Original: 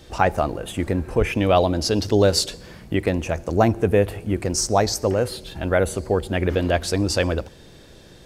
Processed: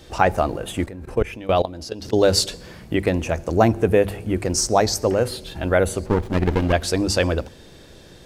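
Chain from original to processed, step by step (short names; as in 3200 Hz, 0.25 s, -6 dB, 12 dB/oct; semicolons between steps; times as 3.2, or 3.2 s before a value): notches 50/100/150/200/250 Hz; 0.84–2.23 level quantiser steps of 18 dB; 6.06–6.73 running maximum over 33 samples; gain +1.5 dB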